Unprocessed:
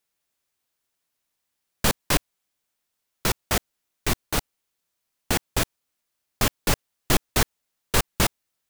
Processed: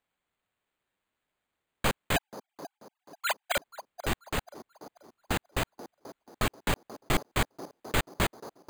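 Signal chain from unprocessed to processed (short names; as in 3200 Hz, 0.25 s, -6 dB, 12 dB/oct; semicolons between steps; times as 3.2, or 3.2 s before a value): 2.16–3.57 sine-wave speech; on a send: band-limited delay 0.485 s, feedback 38%, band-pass 510 Hz, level -10 dB; on the sum: careless resampling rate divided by 8×, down none, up hold; gain -6 dB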